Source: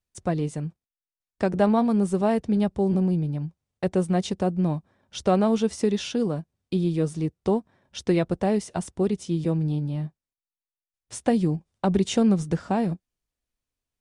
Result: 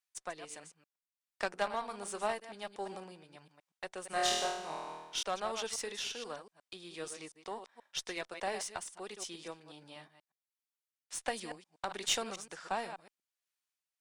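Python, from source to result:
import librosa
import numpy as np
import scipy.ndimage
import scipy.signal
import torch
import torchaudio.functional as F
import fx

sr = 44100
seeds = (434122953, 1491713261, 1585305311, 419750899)

y = fx.reverse_delay(x, sr, ms=120, wet_db=-10.0)
y = scipy.signal.sosfilt(scipy.signal.butter(2, 1100.0, 'highpass', fs=sr, output='sos'), y)
y = fx.cheby_harmonics(y, sr, harmonics=(2, 4), levels_db=(-12, -15), full_scale_db=-17.5)
y = fx.room_flutter(y, sr, wall_m=4.3, rt60_s=1.1, at=(4.1, 5.23))
y = y * (1.0 - 0.44 / 2.0 + 0.44 / 2.0 * np.cos(2.0 * np.pi * 1.4 * (np.arange(len(y)) / sr)))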